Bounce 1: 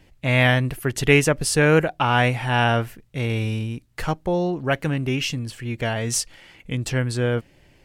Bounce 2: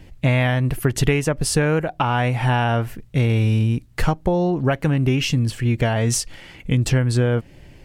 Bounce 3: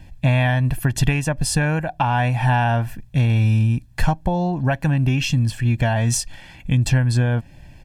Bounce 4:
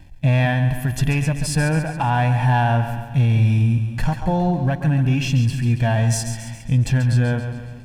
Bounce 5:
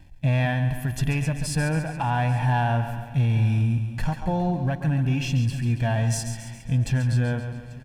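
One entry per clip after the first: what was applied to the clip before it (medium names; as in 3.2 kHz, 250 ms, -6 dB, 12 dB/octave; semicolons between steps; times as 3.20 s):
dynamic bell 870 Hz, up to +4 dB, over -32 dBFS, Q 1; compression 6:1, threshold -24 dBFS, peak gain reduction 14 dB; bass shelf 300 Hz +7.5 dB; trim +5 dB
comb 1.2 ms, depth 67%; trim -2 dB
two-band feedback delay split 320 Hz, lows 202 ms, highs 138 ms, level -10 dB; waveshaping leveller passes 1; harmonic-percussive split percussive -7 dB; trim -2 dB
delay 840 ms -22.5 dB; trim -5 dB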